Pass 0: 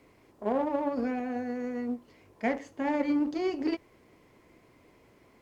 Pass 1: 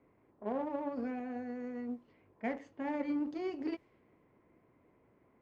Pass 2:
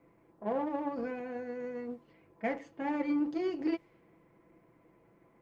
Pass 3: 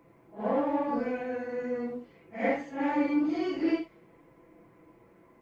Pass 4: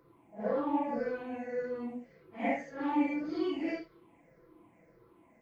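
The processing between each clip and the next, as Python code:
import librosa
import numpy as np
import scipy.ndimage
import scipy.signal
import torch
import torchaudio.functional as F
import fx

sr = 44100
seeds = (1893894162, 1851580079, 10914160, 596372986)

y1 = fx.bass_treble(x, sr, bass_db=5, treble_db=-7)
y1 = fx.env_lowpass(y1, sr, base_hz=1600.0, full_db=-26.0)
y1 = fx.low_shelf(y1, sr, hz=93.0, db=-10.5)
y1 = F.gain(torch.from_numpy(y1), -8.0).numpy()
y2 = y1 + 0.53 * np.pad(y1, (int(6.0 * sr / 1000.0), 0))[:len(y1)]
y2 = F.gain(torch.from_numpy(y2), 3.0).numpy()
y3 = fx.phase_scramble(y2, sr, seeds[0], window_ms=200)
y3 = F.gain(torch.from_numpy(y3), 6.0).numpy()
y4 = fx.spec_ripple(y3, sr, per_octave=0.59, drift_hz=-1.8, depth_db=12)
y4 = F.gain(torch.from_numpy(y4), -5.5).numpy()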